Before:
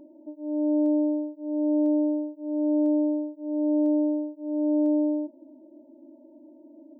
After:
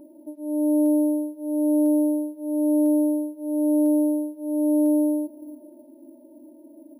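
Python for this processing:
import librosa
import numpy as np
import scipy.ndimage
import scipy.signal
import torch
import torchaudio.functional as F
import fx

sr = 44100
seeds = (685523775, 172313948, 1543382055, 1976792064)

p1 = x + fx.echo_stepped(x, sr, ms=173, hz=210.0, octaves=0.7, feedback_pct=70, wet_db=-10.5, dry=0)
p2 = np.repeat(p1[::4], 4)[:len(p1)]
y = p2 * 10.0 ** (2.5 / 20.0)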